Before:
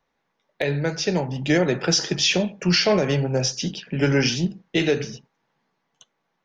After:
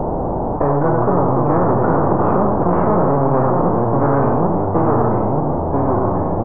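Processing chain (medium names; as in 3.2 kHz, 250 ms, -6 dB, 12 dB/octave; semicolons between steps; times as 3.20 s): partial rectifier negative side -7 dB; echo from a far wall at 16 m, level -11 dB; in parallel at -4.5 dB: decimation with a swept rate 37×, swing 100% 0.8 Hz; on the sum: hard clipper -21 dBFS, distortion -7 dB; ever faster or slower copies 89 ms, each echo -3 st, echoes 3, each echo -6 dB; added noise pink -44 dBFS; harmonic-percussive split harmonic +7 dB; steep low-pass 820 Hz 36 dB/octave; spectrum-flattening compressor 4:1; trim +5 dB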